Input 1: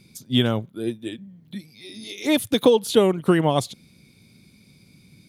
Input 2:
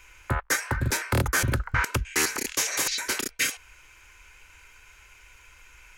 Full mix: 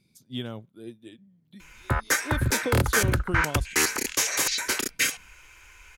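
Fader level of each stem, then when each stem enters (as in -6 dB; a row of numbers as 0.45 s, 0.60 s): -14.0 dB, +1.5 dB; 0.00 s, 1.60 s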